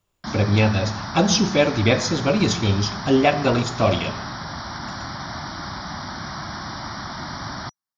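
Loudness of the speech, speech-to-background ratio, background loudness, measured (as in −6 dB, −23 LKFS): −20.5 LKFS, 11.0 dB, −31.5 LKFS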